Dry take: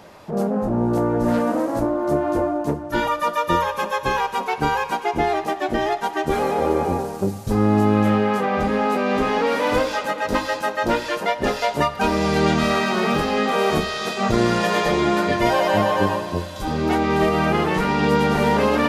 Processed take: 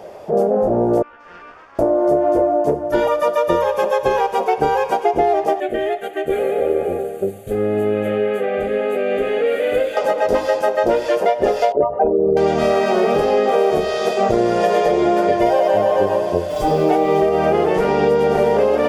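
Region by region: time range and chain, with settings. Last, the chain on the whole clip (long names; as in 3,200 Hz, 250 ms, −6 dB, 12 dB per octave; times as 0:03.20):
0:01.02–0:01.79: Butterworth high-pass 1,200 Hz + tube saturation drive 32 dB, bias 0.75 + high-frequency loss of the air 230 metres
0:05.60–0:09.97: low-shelf EQ 410 Hz −8.5 dB + phaser with its sweep stopped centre 2,300 Hz, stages 4
0:11.72–0:12.37: spectral envelope exaggerated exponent 3 + low-pass filter 8,600 Hz
0:16.49–0:17.20: comb filter 6.7 ms, depth 98% + background noise pink −43 dBFS
whole clip: flat-topped bell 530 Hz +12 dB 1.3 octaves; notch filter 4,000 Hz, Q 9.4; downward compressor, threshold −12 dBFS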